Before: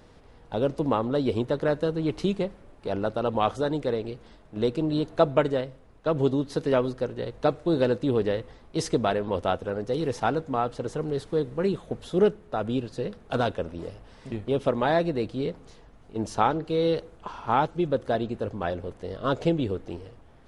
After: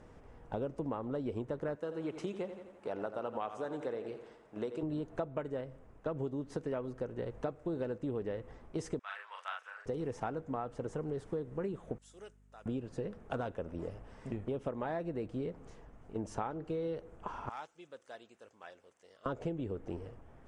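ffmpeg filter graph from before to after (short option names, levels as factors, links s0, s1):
-filter_complex "[0:a]asettb=1/sr,asplit=3[s0][s1][s2];[s0]atrim=end=1.754[s3];[s1]atrim=start=1.75:end=4.83,asetpts=PTS-STARTPTS,afade=t=in:d=0.004:c=qsin,afade=t=out:st=3.076:d=0.004:c=qsin,highpass=f=500:p=1,aecho=1:1:85|170|255|340|425|510:0.251|0.133|0.0706|0.0374|0.0198|0.0105,atrim=end_sample=135828[s4];[s2]atrim=start=4.826[s5];[s3][s4]acrossfade=d=0.004:c1=hsin:c2=qsin[s6];[s6][s5]acrossfade=d=0.004:c1=qsin:c2=hsin,asettb=1/sr,asplit=3[s7][s8][s9];[s7]atrim=end=8.994[s10];[s8]atrim=start=8.99:end=9.86,asetpts=PTS-STARTPTS,afade=t=in:d=0.004:c=qsin,afade=t=out:st=0.866:d=0.004:c=qsin,highpass=f=1300:w=0.5412,highpass=f=1300:w=1.3066,highshelf=f=7000:g=-6,asplit=2[s11][s12];[s12]adelay=41,volume=0.708[s13];[s11][s13]amix=inputs=2:normalize=0,atrim=end_sample=38367[s14];[s9]atrim=start=9.856[s15];[s10][s14]acrossfade=d=0.004:c1=hsin:c2=qsin[s16];[s16][s15]acrossfade=d=0.004:c1=qsin:c2=hsin,asettb=1/sr,asplit=3[s17][s18][s19];[s17]atrim=end=11.984[s20];[s18]atrim=start=11.98:end=12.66,asetpts=PTS-STARTPTS,afade=t=in:d=0.004:c=qsin,afade=t=out:st=0.676:d=0.004:c=qsin,bandpass=f=7900:t=q:w=1.3,aeval=exprs='val(0)+0.001*(sin(2*PI*50*n/s)+sin(2*PI*2*50*n/s)/2+sin(2*PI*3*50*n/s)/3+sin(2*PI*4*50*n/s)/4+sin(2*PI*5*50*n/s)/5)':c=same[s21];[s19]atrim=start=12.656[s22];[s20][s21]acrossfade=d=0.004:c1=hsin:c2=qsin[s23];[s23][s22]acrossfade=d=0.004:c1=qsin:c2=hsin,asettb=1/sr,asplit=3[s24][s25][s26];[s24]atrim=end=17.494[s27];[s25]atrim=start=17.49:end=19.26,asetpts=PTS-STARTPTS,afade=t=in:d=0.004:c=qsin,afade=t=out:st=1.766:d=0.004:c=qsin,bandpass=f=6600:t=q:w=0.98,asoftclip=type=hard:threshold=0.0251[s28];[s26]atrim=start=19.256[s29];[s27][s28]acrossfade=d=0.004:c1=hsin:c2=qsin[s30];[s30][s29]acrossfade=d=0.004:c1=qsin:c2=hsin,lowpass=f=8900:w=0.5412,lowpass=f=8900:w=1.3066,equalizer=f=4100:w=1.5:g=-13.5,acompressor=threshold=0.0251:ratio=6,volume=0.75"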